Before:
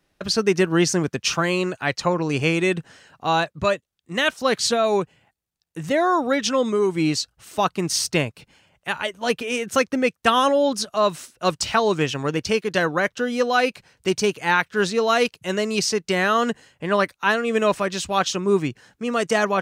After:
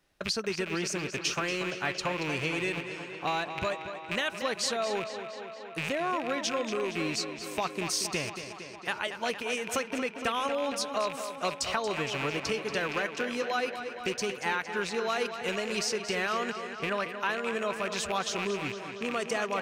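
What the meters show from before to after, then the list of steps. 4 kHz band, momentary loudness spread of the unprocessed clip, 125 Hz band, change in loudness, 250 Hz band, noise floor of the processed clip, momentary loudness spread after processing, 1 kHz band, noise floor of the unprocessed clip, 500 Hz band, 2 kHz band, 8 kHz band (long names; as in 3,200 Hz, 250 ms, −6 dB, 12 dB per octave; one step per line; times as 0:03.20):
−7.5 dB, 7 LU, −12.5 dB, −9.5 dB, −12.0 dB, −44 dBFS, 5 LU, −10.0 dB, −75 dBFS, −11.0 dB, −7.5 dB, −7.5 dB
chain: loose part that buzzes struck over −33 dBFS, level −17 dBFS
downward compressor 4 to 1, threshold −26 dBFS, peak gain reduction 11.5 dB
parametric band 170 Hz −4.5 dB 2.7 octaves
on a send: tape delay 231 ms, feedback 79%, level −8.5 dB, low-pass 5,500 Hz
on the sum: level −2 dB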